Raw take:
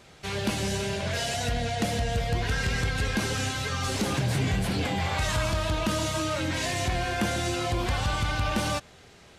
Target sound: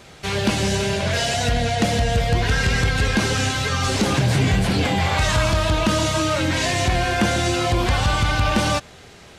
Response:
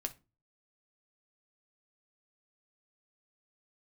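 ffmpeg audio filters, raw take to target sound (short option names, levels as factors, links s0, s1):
-filter_complex "[0:a]acrossover=split=8900[s0][s1];[s1]acompressor=threshold=0.00251:ratio=4:attack=1:release=60[s2];[s0][s2]amix=inputs=2:normalize=0,volume=2.51"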